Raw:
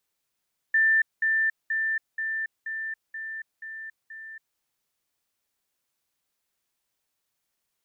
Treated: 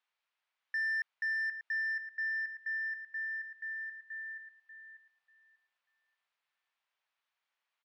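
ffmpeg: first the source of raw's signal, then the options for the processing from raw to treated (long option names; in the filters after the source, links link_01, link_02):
-f lavfi -i "aevalsrc='pow(10,(-17.5-3*floor(t/0.48))/20)*sin(2*PI*1780*t)*clip(min(mod(t,0.48),0.28-mod(t,0.48))/0.005,0,1)':duration=3.84:sample_rate=44100"
-filter_complex "[0:a]asoftclip=type=tanh:threshold=-31.5dB,asuperpass=centerf=1600:order=4:qfactor=0.63,asplit=2[link_01][link_02];[link_02]adelay=590,lowpass=frequency=1600:poles=1,volume=-6.5dB,asplit=2[link_03][link_04];[link_04]adelay=590,lowpass=frequency=1600:poles=1,volume=0.28,asplit=2[link_05][link_06];[link_06]adelay=590,lowpass=frequency=1600:poles=1,volume=0.28,asplit=2[link_07][link_08];[link_08]adelay=590,lowpass=frequency=1600:poles=1,volume=0.28[link_09];[link_03][link_05][link_07][link_09]amix=inputs=4:normalize=0[link_10];[link_01][link_10]amix=inputs=2:normalize=0"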